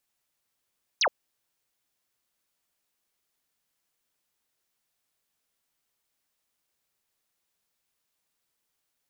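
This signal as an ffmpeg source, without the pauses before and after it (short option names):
-f lavfi -i "aevalsrc='0.1*clip(t/0.002,0,1)*clip((0.07-t)/0.002,0,1)*sin(2*PI*6600*0.07/log(460/6600)*(exp(log(460/6600)*t/0.07)-1))':d=0.07:s=44100"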